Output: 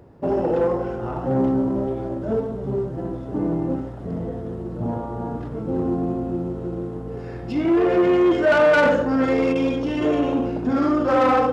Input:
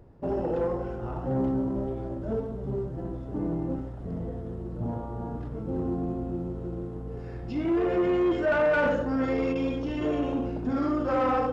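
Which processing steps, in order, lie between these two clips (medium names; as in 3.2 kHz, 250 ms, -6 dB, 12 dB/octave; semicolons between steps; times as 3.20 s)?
tracing distortion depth 0.047 ms; high-pass 140 Hz 6 dB/octave; trim +8 dB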